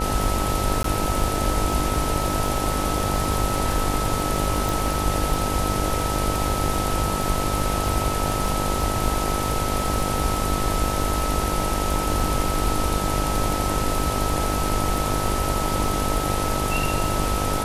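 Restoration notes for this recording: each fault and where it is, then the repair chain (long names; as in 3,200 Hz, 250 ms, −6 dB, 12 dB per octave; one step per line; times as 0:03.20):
mains buzz 50 Hz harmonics 19 −28 dBFS
surface crackle 37 per second −28 dBFS
whistle 1,300 Hz −28 dBFS
0:00.83–0:00.84: drop-out 13 ms
0:04.69: click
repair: click removal
hum removal 50 Hz, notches 19
notch filter 1,300 Hz, Q 30
repair the gap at 0:00.83, 13 ms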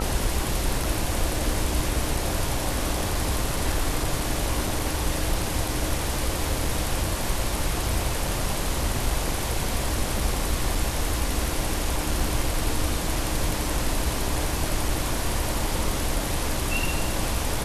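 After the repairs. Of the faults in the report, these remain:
none of them is left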